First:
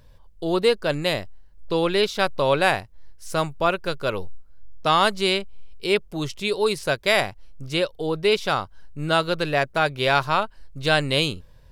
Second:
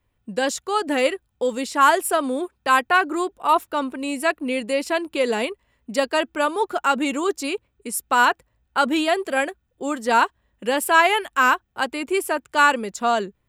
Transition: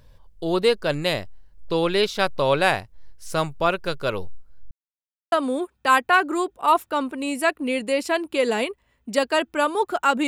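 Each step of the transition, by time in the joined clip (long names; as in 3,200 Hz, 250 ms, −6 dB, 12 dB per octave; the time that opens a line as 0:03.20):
first
0:04.71–0:05.32: silence
0:05.32: continue with second from 0:02.13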